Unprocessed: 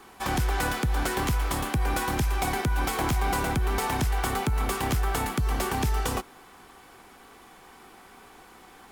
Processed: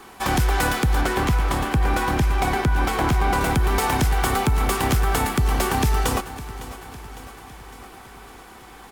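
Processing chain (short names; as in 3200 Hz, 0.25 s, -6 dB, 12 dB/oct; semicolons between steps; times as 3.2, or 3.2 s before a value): 1.01–3.41 high shelf 4800 Hz -9 dB; feedback echo 0.556 s, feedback 59%, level -15.5 dB; gain +6 dB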